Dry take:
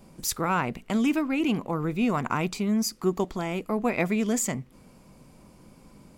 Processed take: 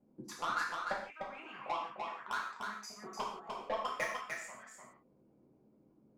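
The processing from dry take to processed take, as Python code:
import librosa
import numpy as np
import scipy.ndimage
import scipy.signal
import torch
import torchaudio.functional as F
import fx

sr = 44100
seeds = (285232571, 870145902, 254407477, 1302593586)

y = fx.peak_eq(x, sr, hz=350.0, db=-10.0, octaves=0.29)
y = fx.auto_wah(y, sr, base_hz=300.0, top_hz=1800.0, q=3.8, full_db=-21.5, direction='up')
y = fx.hpss(y, sr, part='harmonic', gain_db=-11)
y = fx.level_steps(y, sr, step_db=19)
y = fx.transient(y, sr, attack_db=8, sustain_db=-10)
y = 10.0 ** (-34.5 / 20.0) * np.tanh(y / 10.0 ** (-34.5 / 20.0))
y = y + 10.0 ** (-4.5 / 20.0) * np.pad(y, (int(299 * sr / 1000.0), 0))[:len(y)]
y = fx.rev_gated(y, sr, seeds[0], gate_ms=200, shape='falling', drr_db=-4.0)
y = y * 10.0 ** (1.0 / 20.0)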